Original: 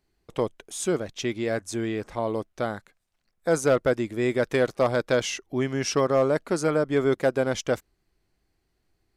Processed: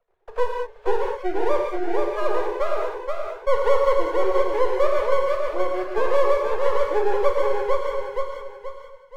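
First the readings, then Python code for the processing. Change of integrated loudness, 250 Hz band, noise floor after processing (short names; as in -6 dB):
+2.5 dB, -6.0 dB, -48 dBFS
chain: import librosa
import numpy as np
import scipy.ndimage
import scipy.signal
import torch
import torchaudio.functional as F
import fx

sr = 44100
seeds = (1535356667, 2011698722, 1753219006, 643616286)

y = fx.sine_speech(x, sr)
y = scipy.signal.sosfilt(scipy.signal.butter(4, 480.0, 'highpass', fs=sr, output='sos'), y)
y = fx.tilt_eq(y, sr, slope=-3.5)
y = fx.rider(y, sr, range_db=3, speed_s=2.0)
y = scipy.ndimage.gaussian_filter1d(y, 4.9, mode='constant')
y = np.maximum(y, 0.0)
y = fx.echo_feedback(y, sr, ms=477, feedback_pct=25, wet_db=-5.0)
y = fx.rev_gated(y, sr, seeds[0], gate_ms=220, shape='flat', drr_db=0.0)
y = fx.band_squash(y, sr, depth_pct=40)
y = F.gain(torch.from_numpy(y), 4.0).numpy()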